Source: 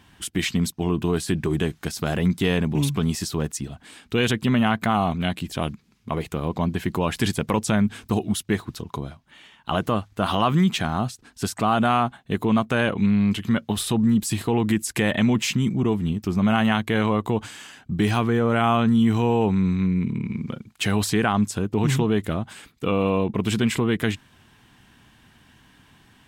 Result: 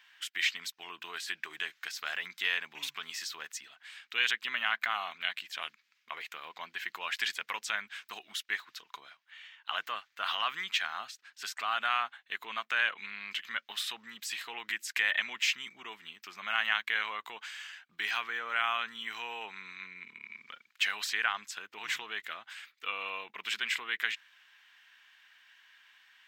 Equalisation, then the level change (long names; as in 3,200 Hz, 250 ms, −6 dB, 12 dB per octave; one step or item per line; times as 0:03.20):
high-pass with resonance 1,800 Hz, resonance Q 1.6
parametric band 9,900 Hz −15 dB 0.73 octaves
−4.0 dB